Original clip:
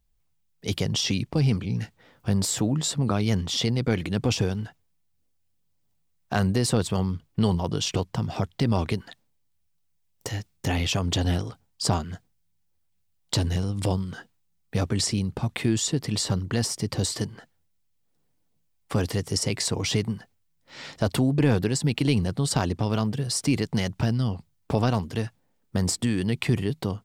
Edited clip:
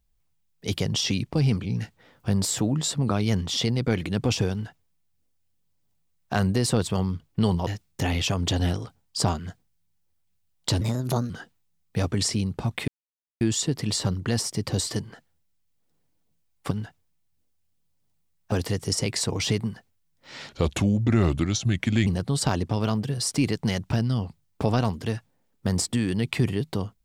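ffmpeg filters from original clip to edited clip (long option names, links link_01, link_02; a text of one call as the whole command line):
ffmpeg -i in.wav -filter_complex "[0:a]asplit=9[link_01][link_02][link_03][link_04][link_05][link_06][link_07][link_08][link_09];[link_01]atrim=end=7.672[link_10];[link_02]atrim=start=10.318:end=13.464[link_11];[link_03]atrim=start=13.46:end=14.08,asetpts=PTS-STARTPTS,asetrate=56007,aresample=44100,atrim=end_sample=21529,asetpts=PTS-STARTPTS[link_12];[link_04]atrim=start=14.076:end=15.66,asetpts=PTS-STARTPTS,afade=type=out:start_time=1.58:duration=0.004:curve=hsin,apad=pad_dur=0.53[link_13];[link_05]atrim=start=15.66:end=18.962,asetpts=PTS-STARTPTS,afade=type=in:duration=0.004:curve=hsin[link_14];[link_06]atrim=start=4.518:end=6.332[link_15];[link_07]atrim=start=18.958:end=20.934[link_16];[link_08]atrim=start=20.93:end=22.16,asetpts=PTS-STARTPTS,asetrate=34398,aresample=44100,atrim=end_sample=69542,asetpts=PTS-STARTPTS[link_17];[link_09]atrim=start=22.156[link_18];[link_10][link_11]acrossfade=duration=0.004:curve1=hsin:curve2=hsin[link_19];[link_19][link_12]acrossfade=duration=0.004:curve1=hsin:curve2=hsin[link_20];[link_13][link_14]concat=n=2:v=0:a=1[link_21];[link_20][link_21]acrossfade=duration=0.004:curve1=hsin:curve2=hsin[link_22];[link_22][link_15]acrossfade=duration=0.004:curve1=hsin:curve2=hsin[link_23];[link_23][link_16]acrossfade=duration=0.004:curve1=hsin:curve2=hsin[link_24];[link_24][link_17]acrossfade=duration=0.004:curve1=hsin:curve2=hsin[link_25];[link_25][link_18]acrossfade=duration=0.004:curve1=hsin:curve2=hsin" out.wav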